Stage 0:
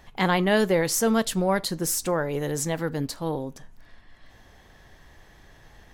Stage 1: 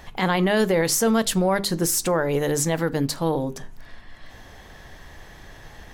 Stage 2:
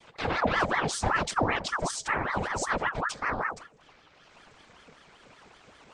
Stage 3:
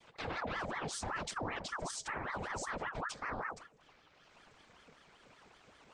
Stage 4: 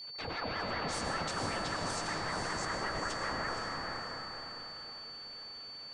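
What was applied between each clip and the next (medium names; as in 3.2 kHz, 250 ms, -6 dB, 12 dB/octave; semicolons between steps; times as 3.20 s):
hum notches 50/100/150/200/250/300/350/400 Hz; in parallel at -1 dB: compression, threshold -32 dBFS, peak gain reduction 14.5 dB; on the sum: peak limiter -15 dBFS, peak gain reduction 7 dB; trim +3 dB
bass shelf 190 Hz +7 dB; noise-vocoded speech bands 16; ring modulator with a swept carrier 920 Hz, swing 70%, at 5.2 Hz; trim -5.5 dB
peak limiter -22.5 dBFS, peak gain reduction 10 dB; trim -7 dB
echo that smears into a reverb 490 ms, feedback 41%, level -4 dB; whistle 4.5 kHz -43 dBFS; algorithmic reverb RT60 3.2 s, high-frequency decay 0.45×, pre-delay 75 ms, DRR 1.5 dB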